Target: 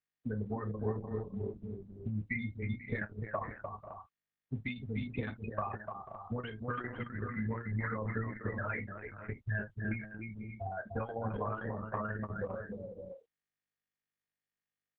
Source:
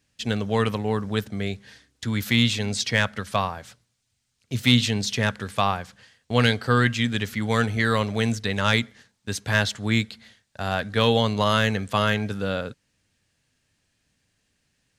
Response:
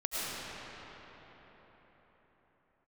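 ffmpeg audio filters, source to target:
-filter_complex "[0:a]lowpass=f=3100:w=0.5412,lowpass=f=3100:w=1.3066,agate=range=0.00178:threshold=0.00316:ratio=16:detection=peak,afftfilt=real='re*gte(hypot(re,im),0.224)':imag='im*gte(hypot(re,im),0.224)':win_size=1024:overlap=0.75,highpass=55,equalizer=f=180:w=0.46:g=-5.5,acompressor=threshold=0.0126:ratio=6,asplit=2[s0][s1];[s1]adelay=28,volume=0.376[s2];[s0][s2]amix=inputs=2:normalize=0,asplit=2[s3][s4];[s4]aecho=0:1:47|299|491|528|561:0.158|0.501|0.2|0.158|0.282[s5];[s3][s5]amix=inputs=2:normalize=0,volume=1.41" -ar 48000 -c:a libopus -b:a 6k

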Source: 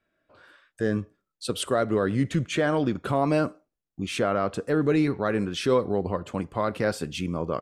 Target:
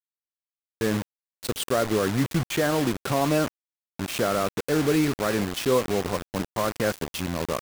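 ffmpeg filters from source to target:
-af "acrusher=bits=4:mix=0:aa=0.000001"

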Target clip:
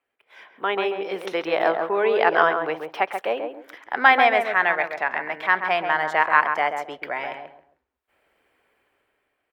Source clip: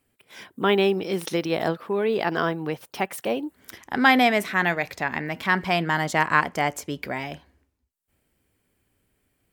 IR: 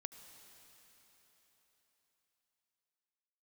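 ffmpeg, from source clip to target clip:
-filter_complex "[0:a]acrossover=split=450 3000:gain=0.0631 1 0.112[s0][s1][s2];[s0][s1][s2]amix=inputs=3:normalize=0,asplit=2[s3][s4];[s4]adelay=135,lowpass=f=1200:p=1,volume=0.596,asplit=2[s5][s6];[s6]adelay=135,lowpass=f=1200:p=1,volume=0.25,asplit=2[s7][s8];[s8]adelay=135,lowpass=f=1200:p=1,volume=0.25[s9];[s3][s5][s7][s9]amix=inputs=4:normalize=0,dynaudnorm=f=200:g=13:m=6.31,volume=0.891"

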